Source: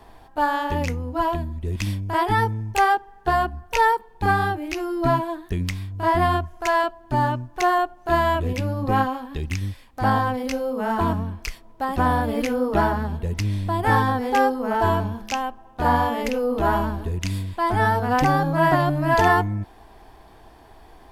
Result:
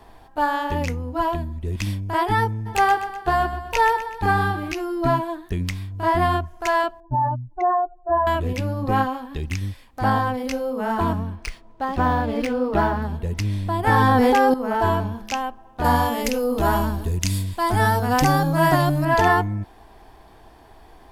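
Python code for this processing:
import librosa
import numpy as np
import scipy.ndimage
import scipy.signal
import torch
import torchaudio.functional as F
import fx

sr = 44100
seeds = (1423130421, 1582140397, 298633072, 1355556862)

y = fx.echo_feedback(x, sr, ms=125, feedback_pct=51, wet_db=-11.0, at=(2.65, 4.72), fade=0.02)
y = fx.spec_expand(y, sr, power=2.4, at=(7.0, 8.27))
y = fx.resample_linear(y, sr, factor=3, at=(11.35, 13.02))
y = fx.env_flatten(y, sr, amount_pct=100, at=(13.87, 14.54))
y = fx.bass_treble(y, sr, bass_db=3, treble_db=11, at=(15.84, 19.05))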